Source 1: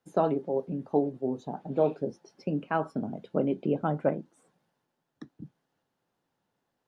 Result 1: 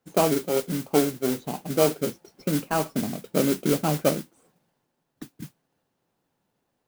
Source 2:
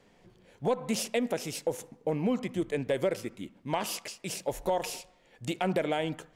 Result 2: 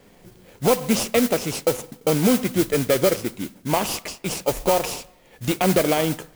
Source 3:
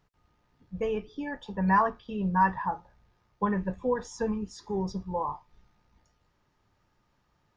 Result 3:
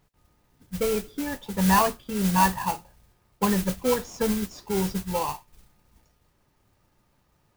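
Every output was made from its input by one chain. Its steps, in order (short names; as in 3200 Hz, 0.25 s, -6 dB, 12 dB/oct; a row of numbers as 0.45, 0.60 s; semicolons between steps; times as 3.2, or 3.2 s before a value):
in parallel at -6.5 dB: sample-rate reducer 1800 Hz, jitter 0%; on the sum: modulation noise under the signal 11 dB; normalise peaks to -6 dBFS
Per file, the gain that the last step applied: +2.0, +7.0, +1.5 dB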